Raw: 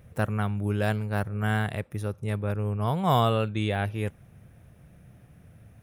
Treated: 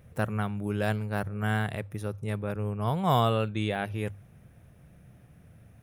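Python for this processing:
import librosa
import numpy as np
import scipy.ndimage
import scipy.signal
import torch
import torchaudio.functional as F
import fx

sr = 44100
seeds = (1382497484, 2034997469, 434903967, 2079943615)

y = fx.hum_notches(x, sr, base_hz=50, count=2)
y = F.gain(torch.from_numpy(y), -1.5).numpy()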